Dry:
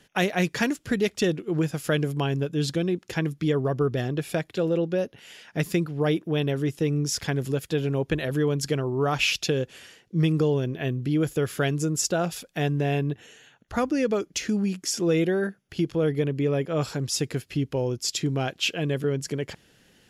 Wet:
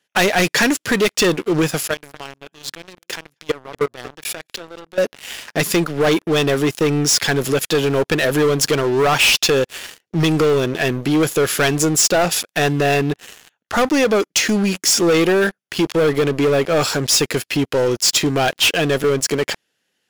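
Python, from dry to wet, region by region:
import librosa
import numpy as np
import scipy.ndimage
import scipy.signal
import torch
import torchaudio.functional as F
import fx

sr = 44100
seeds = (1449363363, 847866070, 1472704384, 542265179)

y = fx.chain(x, sr, fx.level_steps(step_db=21),
    fx.low_shelf(hz=240.0, db=-3.5),
    fx.echo_single(ms=234, db=-20.5), at=(1.8, 4.98))
y = fx.highpass(y, sr, hz=630.0, slope=6)
y = fx.leveller(y, sr, passes=5)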